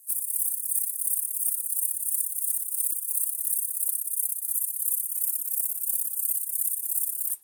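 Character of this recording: tremolo triangle 2.9 Hz, depth 60%

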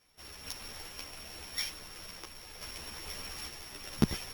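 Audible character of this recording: a buzz of ramps at a fixed pitch in blocks of 8 samples; random-step tremolo 2.3 Hz; a shimmering, thickened sound

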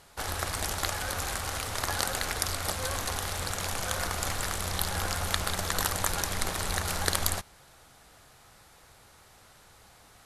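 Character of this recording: noise floor -57 dBFS; spectral tilt -2.5 dB/oct

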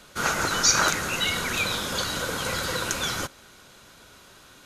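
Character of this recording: noise floor -52 dBFS; spectral tilt -3.0 dB/oct

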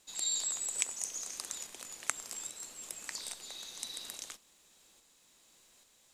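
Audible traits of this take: a quantiser's noise floor 12-bit, dither none; tremolo saw up 1.2 Hz, depth 35%

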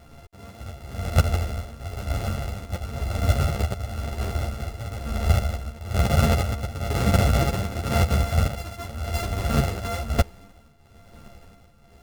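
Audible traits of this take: a buzz of ramps at a fixed pitch in blocks of 64 samples; tremolo triangle 1 Hz, depth 80%; a shimmering, thickened sound

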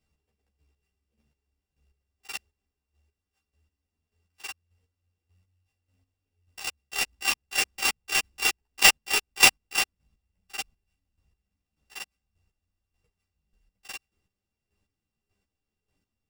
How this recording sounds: a buzz of ramps at a fixed pitch in blocks of 16 samples; chopped level 1.7 Hz, depth 65%, duty 25%; aliases and images of a low sample rate 13000 Hz, jitter 0%; a shimmering, thickened sound

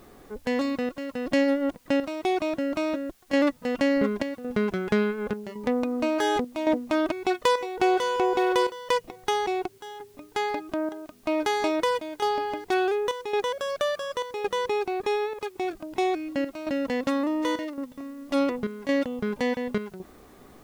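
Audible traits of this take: chopped level 0.9 Hz, depth 65%, duty 80%; a quantiser's noise floor 10-bit, dither triangular

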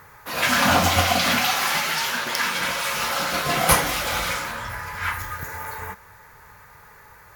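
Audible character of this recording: noise floor -49 dBFS; spectral tilt -3.0 dB/oct

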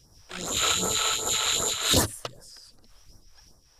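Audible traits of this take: phasing stages 2, 2.6 Hz, lowest notch 160–2800 Hz; noise-modulated level

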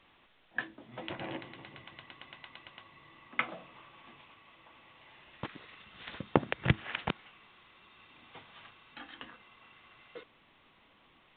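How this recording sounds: a quantiser's noise floor 10-bit, dither triangular; µ-law

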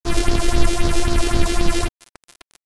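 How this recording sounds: a buzz of ramps at a fixed pitch in blocks of 128 samples; phasing stages 4, 3.8 Hz, lowest notch 140–2300 Hz; a quantiser's noise floor 6-bit, dither none; AAC

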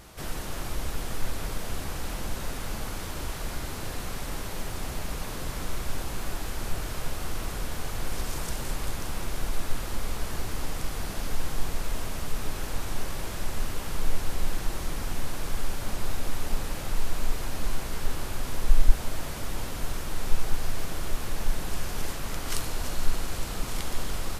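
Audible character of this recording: noise floor -35 dBFS; spectral tilt -4.0 dB/oct

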